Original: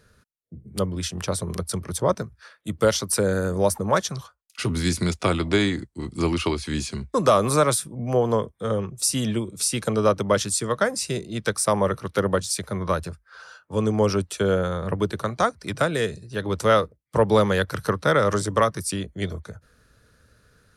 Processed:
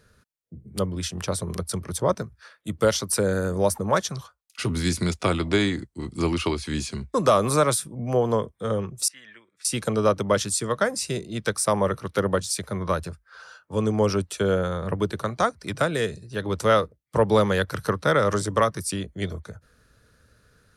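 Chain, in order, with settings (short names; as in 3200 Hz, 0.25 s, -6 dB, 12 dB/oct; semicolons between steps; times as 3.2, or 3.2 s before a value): 9.08–9.65 band-pass 1800 Hz, Q 5.5; gain -1 dB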